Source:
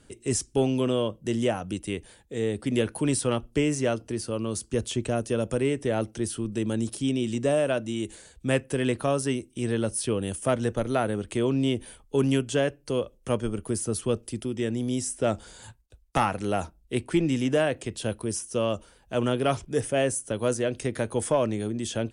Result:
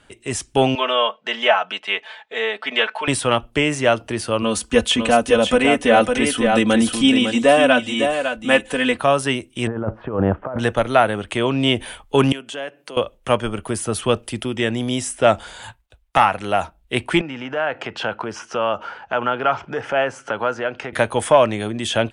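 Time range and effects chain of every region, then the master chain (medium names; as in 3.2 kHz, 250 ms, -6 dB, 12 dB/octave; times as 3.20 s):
0.75–3.08 s: band-pass 760–4700 Hz + distance through air 84 m + comb 4.6 ms, depth 82%
4.42–8.98 s: comb 4 ms, depth 79% + delay 554 ms -5.5 dB
9.67–10.59 s: low-pass 1.3 kHz 24 dB/octave + compressor with a negative ratio -30 dBFS, ratio -0.5
12.32–12.97 s: high-pass 180 Hz 24 dB/octave + compression 2.5:1, threshold -47 dBFS
17.21–20.93 s: cabinet simulation 130–5200 Hz, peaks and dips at 450 Hz +3 dB, 850 Hz +8 dB, 1.4 kHz +10 dB, 3.7 kHz -9 dB + compression 2:1, threshold -44 dBFS
whole clip: high-order bell 1.5 kHz +10.5 dB 2.9 oct; level rider; trim -1 dB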